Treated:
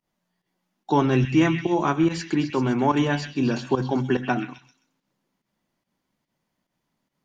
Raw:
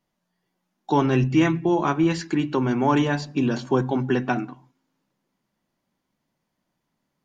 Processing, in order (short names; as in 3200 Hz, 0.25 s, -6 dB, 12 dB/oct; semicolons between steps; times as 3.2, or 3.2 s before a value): pump 144 bpm, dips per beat 1, -15 dB, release 0.105 s; delay with a stepping band-pass 0.13 s, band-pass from 2500 Hz, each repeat 0.7 oct, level -5 dB